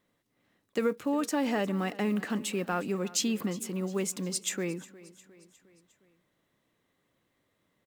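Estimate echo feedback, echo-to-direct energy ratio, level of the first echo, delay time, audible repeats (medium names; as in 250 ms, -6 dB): 54%, -18.0 dB, -19.5 dB, 357 ms, 3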